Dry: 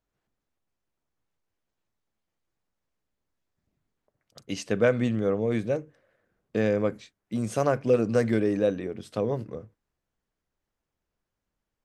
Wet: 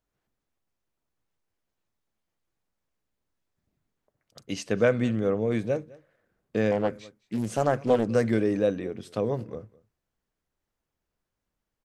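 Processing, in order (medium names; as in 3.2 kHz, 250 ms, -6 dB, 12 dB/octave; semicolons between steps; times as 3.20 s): on a send: delay 207 ms -23 dB; 6.71–8.09 s: on the sum: loudspeaker Doppler distortion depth 0.45 ms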